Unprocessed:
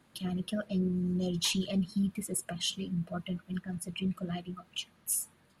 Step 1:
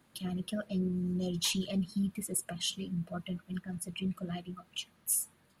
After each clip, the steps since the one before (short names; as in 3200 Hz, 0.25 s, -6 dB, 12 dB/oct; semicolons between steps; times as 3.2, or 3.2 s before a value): high shelf 11000 Hz +7 dB; gain -2 dB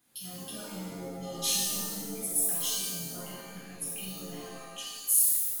pre-emphasis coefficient 0.8; shimmer reverb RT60 1.2 s, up +7 st, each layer -2 dB, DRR -6.5 dB